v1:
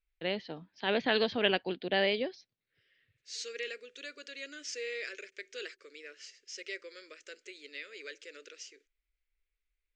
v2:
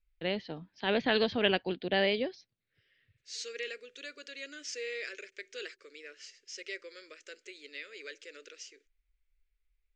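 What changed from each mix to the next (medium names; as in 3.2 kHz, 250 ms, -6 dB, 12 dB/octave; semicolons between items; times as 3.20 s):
first voice: add bass shelf 130 Hz +9.5 dB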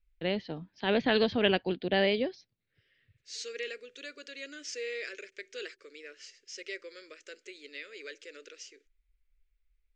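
master: add bass shelf 490 Hz +4 dB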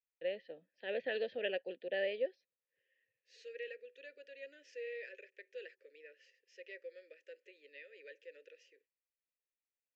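first voice: add bass shelf 130 Hz -9.5 dB; master: add vowel filter e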